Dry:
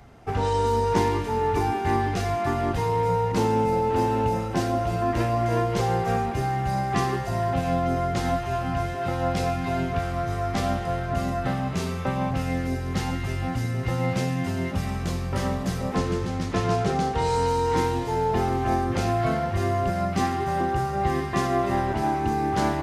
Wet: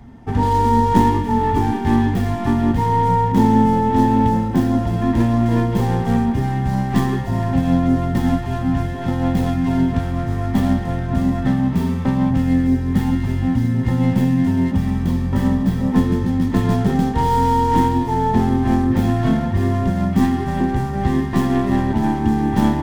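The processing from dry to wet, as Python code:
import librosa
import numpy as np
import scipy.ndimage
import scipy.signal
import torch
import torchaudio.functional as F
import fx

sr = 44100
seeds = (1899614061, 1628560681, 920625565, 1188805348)

y = fx.tracing_dist(x, sr, depth_ms=0.28)
y = fx.low_shelf(y, sr, hz=240.0, db=11.5)
y = fx.small_body(y, sr, hz=(240.0, 910.0, 1800.0, 3300.0), ring_ms=50, db=14)
y = F.gain(torch.from_numpy(y), -3.0).numpy()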